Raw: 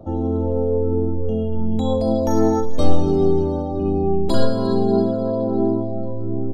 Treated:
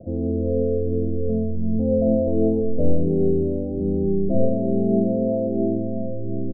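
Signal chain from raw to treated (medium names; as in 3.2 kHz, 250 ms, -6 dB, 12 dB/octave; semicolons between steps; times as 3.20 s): rippled Chebyshev low-pass 710 Hz, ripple 6 dB; on a send: delay 215 ms -12 dB; on the sum: trim +1.5 dB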